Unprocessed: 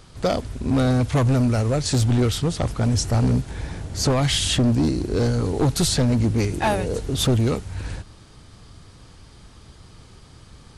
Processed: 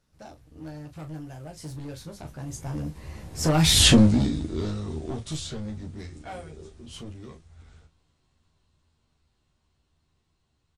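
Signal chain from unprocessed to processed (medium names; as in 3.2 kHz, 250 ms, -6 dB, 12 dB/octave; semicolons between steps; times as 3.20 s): Doppler pass-by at 3.85 s, 52 m/s, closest 6.8 m; on a send: early reflections 13 ms -3.5 dB, 38 ms -8 dB; on the sum: trim +4.5 dB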